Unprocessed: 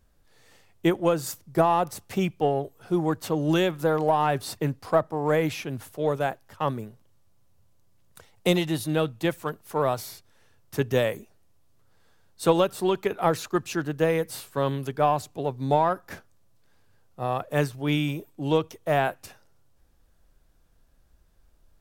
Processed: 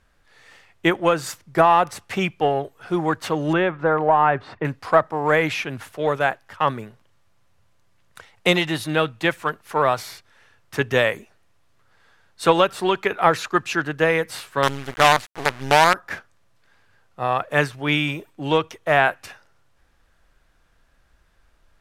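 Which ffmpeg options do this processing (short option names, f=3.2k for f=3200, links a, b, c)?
-filter_complex "[0:a]asettb=1/sr,asplit=3[a][b][c];[a]atrim=end=3.534[d];[b]atrim=start=3.53:end=4.65,asetpts=PTS-STARTPTS,afade=t=in:d=0.004:c=qsin,afade=t=out:st=1.116:d=0.004:c=qsin,lowpass=1.7k[e];[c]atrim=start=4.646[f];[d][e]acrossfade=d=0.004:c1=hsin:c2=qsin[g];[g][f]acrossfade=d=0.004:c1=qsin:c2=hsin,asettb=1/sr,asplit=3[h][i][j];[h]atrim=end=14.634[k];[i]atrim=start=14.63:end=15.94,asetpts=PTS-STARTPTS,afade=t=in:d=0.004:c=qsin,afade=t=out:st=1.306:d=0.004:c=qsin,acrusher=bits=4:dc=4:mix=0:aa=0.000001[l];[j]atrim=start=15.936[m];[k][l]acrossfade=d=0.004:c1=hsin:c2=qsin[n];[n][m]acrossfade=d=0.004:c1=qsin:c2=hsin,lowpass=12k,equalizer=f=1.8k:t=o:w=2.4:g=12"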